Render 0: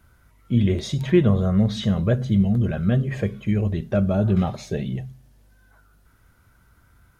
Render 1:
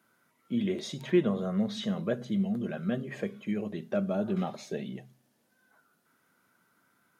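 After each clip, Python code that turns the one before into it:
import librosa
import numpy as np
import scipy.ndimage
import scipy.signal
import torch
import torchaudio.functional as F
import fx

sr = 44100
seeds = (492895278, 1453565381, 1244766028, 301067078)

y = scipy.signal.sosfilt(scipy.signal.butter(4, 190.0, 'highpass', fs=sr, output='sos'), x)
y = F.gain(torch.from_numpy(y), -6.5).numpy()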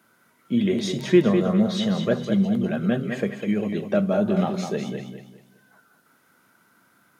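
y = fx.echo_feedback(x, sr, ms=202, feedback_pct=31, wet_db=-7)
y = F.gain(torch.from_numpy(y), 8.0).numpy()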